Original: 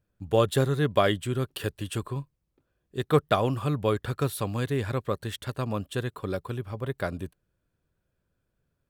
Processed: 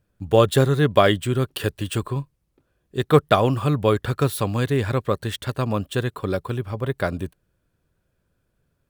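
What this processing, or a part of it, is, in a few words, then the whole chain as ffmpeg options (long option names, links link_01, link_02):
crushed at another speed: -af "asetrate=22050,aresample=44100,acrusher=samples=3:mix=1:aa=0.000001,asetrate=88200,aresample=44100,volume=6.5dB"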